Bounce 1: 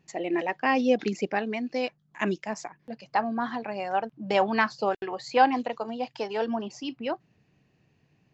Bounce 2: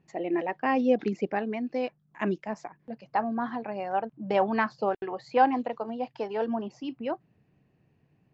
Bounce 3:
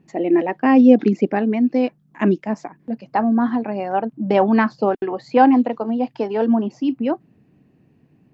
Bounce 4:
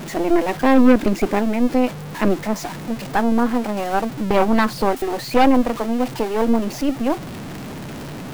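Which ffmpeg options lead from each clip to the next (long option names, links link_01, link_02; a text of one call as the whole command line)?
ffmpeg -i in.wav -af "lowpass=frequency=1300:poles=1" out.wav
ffmpeg -i in.wav -af "equalizer=frequency=260:width=1.3:gain=10,volume=6dB" out.wav
ffmpeg -i in.wav -af "aeval=exprs='val(0)+0.5*0.0708*sgn(val(0))':channel_layout=same,aeval=exprs='0.944*(cos(1*acos(clip(val(0)/0.944,-1,1)))-cos(1*PI/2))+0.168*(cos(6*acos(clip(val(0)/0.944,-1,1)))-cos(6*PI/2))':channel_layout=same,volume=-3dB" out.wav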